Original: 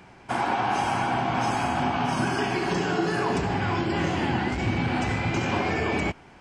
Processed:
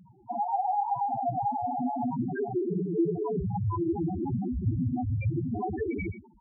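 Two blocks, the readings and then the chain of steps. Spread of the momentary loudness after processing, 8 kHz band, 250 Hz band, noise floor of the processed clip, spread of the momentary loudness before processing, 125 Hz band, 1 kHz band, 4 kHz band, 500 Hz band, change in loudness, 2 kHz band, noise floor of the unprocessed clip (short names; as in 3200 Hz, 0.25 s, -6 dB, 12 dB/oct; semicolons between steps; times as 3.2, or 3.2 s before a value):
4 LU, under -40 dB, -3.0 dB, -56 dBFS, 1 LU, -2.0 dB, -4.0 dB, under -40 dB, -4.0 dB, -4.5 dB, -20.0 dB, -50 dBFS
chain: on a send: frequency-shifting echo 86 ms, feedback 31%, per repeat +32 Hz, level -13 dB; on the sum: loudest bins only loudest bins 2; gain +4 dB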